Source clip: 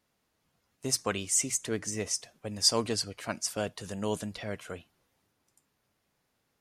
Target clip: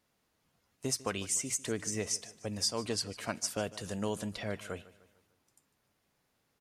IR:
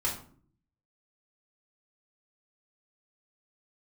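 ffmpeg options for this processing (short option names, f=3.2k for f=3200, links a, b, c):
-af "acompressor=threshold=-29dB:ratio=6,aecho=1:1:150|300|450|600:0.119|0.0559|0.0263|0.0123"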